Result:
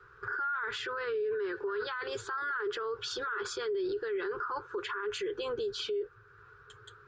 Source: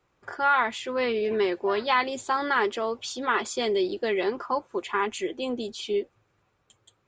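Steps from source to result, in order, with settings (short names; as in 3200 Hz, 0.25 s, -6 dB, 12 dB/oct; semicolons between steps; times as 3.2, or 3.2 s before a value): EQ curve 130 Hz 0 dB, 260 Hz -27 dB, 420 Hz +8 dB, 630 Hz -22 dB, 1500 Hz +15 dB, 2100 Hz -9 dB, 4800 Hz -6 dB, 6900 Hz -15 dB; in parallel at 0 dB: compressor, threshold -47 dBFS, peak gain reduction 34 dB; on the sum: limiter -33.5 dBFS, peak gain reduction 30.5 dB; gain +5.5 dB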